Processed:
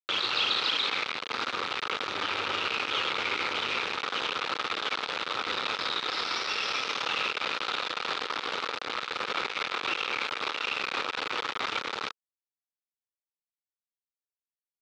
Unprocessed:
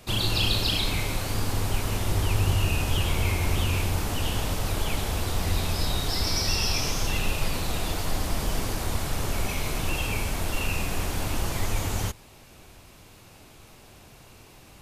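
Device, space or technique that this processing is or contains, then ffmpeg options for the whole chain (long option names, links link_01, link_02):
hand-held game console: -af "acrusher=bits=3:mix=0:aa=0.000001,highpass=460,equalizer=frequency=470:width_type=q:width=4:gain=4,equalizer=frequency=670:width_type=q:width=4:gain=-6,equalizer=frequency=1300:width_type=q:width=4:gain=10,equalizer=frequency=2400:width_type=q:width=4:gain=4,equalizer=frequency=3700:width_type=q:width=4:gain=5,lowpass=frequency=4400:width=0.5412,lowpass=frequency=4400:width=1.3066,volume=-4dB"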